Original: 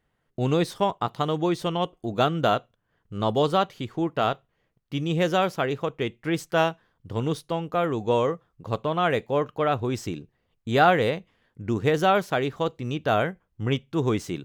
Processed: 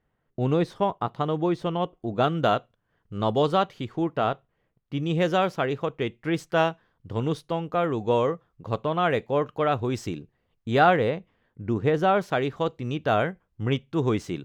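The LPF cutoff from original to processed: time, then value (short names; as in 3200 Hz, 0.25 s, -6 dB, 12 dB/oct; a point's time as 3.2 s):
LPF 6 dB/oct
1700 Hz
from 2.24 s 4500 Hz
from 4.17 s 2000 Hz
from 5.03 s 4300 Hz
from 9.47 s 7800 Hz
from 10.15 s 3800 Hz
from 10.96 s 1700 Hz
from 12.21 s 4600 Hz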